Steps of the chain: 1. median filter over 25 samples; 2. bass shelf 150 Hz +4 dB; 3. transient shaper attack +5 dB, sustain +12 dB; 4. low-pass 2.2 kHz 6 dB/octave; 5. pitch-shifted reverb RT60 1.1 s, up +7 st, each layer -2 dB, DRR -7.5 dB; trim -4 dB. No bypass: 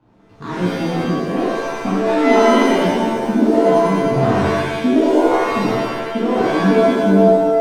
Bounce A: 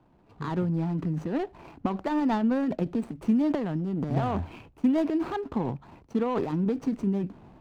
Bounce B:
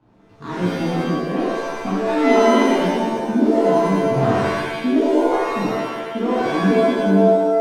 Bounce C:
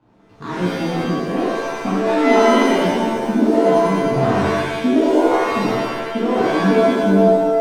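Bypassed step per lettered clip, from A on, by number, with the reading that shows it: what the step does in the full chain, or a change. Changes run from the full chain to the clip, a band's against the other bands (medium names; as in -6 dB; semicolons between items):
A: 5, 125 Hz band +9.0 dB; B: 3, loudness change -2.5 LU; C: 2, loudness change -1.0 LU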